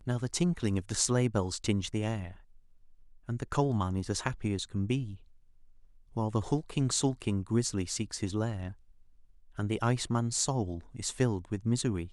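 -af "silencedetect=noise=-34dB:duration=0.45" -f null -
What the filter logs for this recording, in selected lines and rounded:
silence_start: 2.26
silence_end: 3.29 | silence_duration: 1.03
silence_start: 5.10
silence_end: 6.17 | silence_duration: 1.07
silence_start: 8.69
silence_end: 9.59 | silence_duration: 0.89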